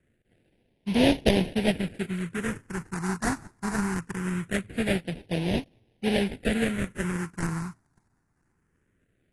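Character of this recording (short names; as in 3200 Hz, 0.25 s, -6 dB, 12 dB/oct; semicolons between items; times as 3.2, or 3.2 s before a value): aliases and images of a low sample rate 1200 Hz, jitter 20%; phasing stages 4, 0.22 Hz, lowest notch 520–1300 Hz; AAC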